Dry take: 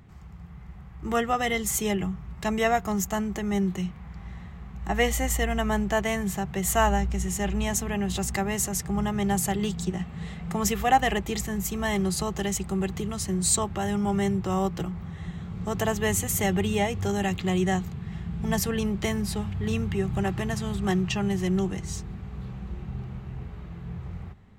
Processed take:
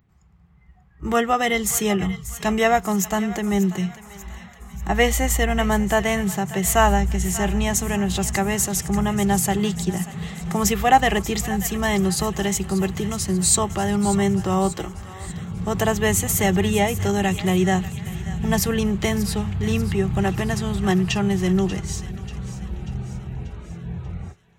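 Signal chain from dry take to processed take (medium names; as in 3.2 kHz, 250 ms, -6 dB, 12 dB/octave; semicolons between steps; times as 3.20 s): spectral noise reduction 17 dB; 14.72–15.30 s: peaking EQ 160 Hz -14.5 dB 0.6 oct; thinning echo 588 ms, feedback 54%, high-pass 1.1 kHz, level -13 dB; trim +5.5 dB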